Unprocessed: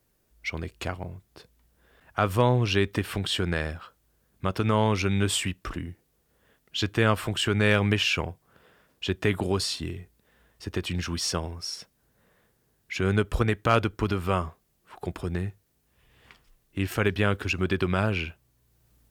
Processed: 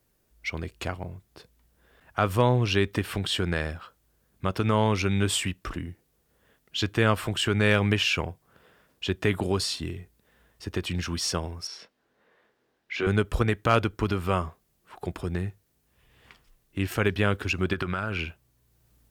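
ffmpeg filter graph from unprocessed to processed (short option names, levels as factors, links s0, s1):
-filter_complex "[0:a]asettb=1/sr,asplit=3[s0][s1][s2];[s0]atrim=end=11.674[s3];[s1]atrim=start=11.67:end=13.07,asetpts=PTS-STARTPTS,afade=t=in:d=0.004:c=qsin,afade=t=out:st=1.396:d=0.004:c=qsin,acrossover=split=240 4600:gain=0.126 1 0.126[s4][s5][s6];[s4][s5][s6]amix=inputs=3:normalize=0,asplit=2[s7][s8];[s8]adelay=24,volume=0.75[s9];[s7][s9]amix=inputs=2:normalize=0,atrim=end_sample=61740[s10];[s2]atrim=start=13.066[s11];[s3][s10]acrossfade=d=0.004:c1=hsin:c2=qsin[s12];[s12][s11]acrossfade=d=0.004:c1=qsin:c2=hsin,asettb=1/sr,asplit=3[s13][s14][s15];[s13]atrim=end=17.734[s16];[s14]atrim=start=17.73:end=18.19,asetpts=PTS-STARTPTS,afade=t=in:d=0.004:c=qsin,afade=t=out:st=0.456:d=0.004:c=qsin,equalizer=f=1400:t=o:w=0.51:g=10,acompressor=threshold=0.0631:ratio=10:attack=3.2:release=140:knee=1:detection=peak[s17];[s15]atrim=start=18.186[s18];[s16][s17]acrossfade=d=0.004:c1=hsin:c2=qsin[s19];[s19][s18]acrossfade=d=0.004:c1=qsin:c2=hsin"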